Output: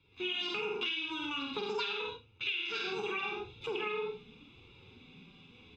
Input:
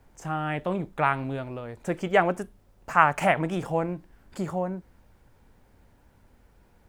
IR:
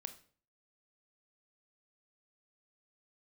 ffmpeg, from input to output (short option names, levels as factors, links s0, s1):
-filter_complex "[0:a]tremolo=f=260:d=0.4,flanger=delay=5:depth=6.9:regen=-11:speed=0.71:shape=sinusoidal,firequalizer=gain_entry='entry(180,0);entry(530,-12);entry(760,-9);entry(1200,12);entry(2000,-7);entry(3600,-13);entry(6600,-25)':delay=0.05:min_phase=1,atempo=0.51,aecho=1:1:110|198|268.4|324.7|369.8:0.631|0.398|0.251|0.158|0.1,acrossover=split=290|3400[s0][s1][s2];[s2]acrusher=bits=3:mix=0:aa=0.000001[s3];[s0][s1][s3]amix=inputs=3:normalize=0,dynaudnorm=f=390:g=3:m=3.55,aecho=1:1:1.9:0.93,acompressor=threshold=0.0398:ratio=16,highpass=f=100:p=1,asetrate=103194,aresample=44100[s4];[1:a]atrim=start_sample=2205,atrim=end_sample=3528[s5];[s4][s5]afir=irnorm=-1:irlink=0"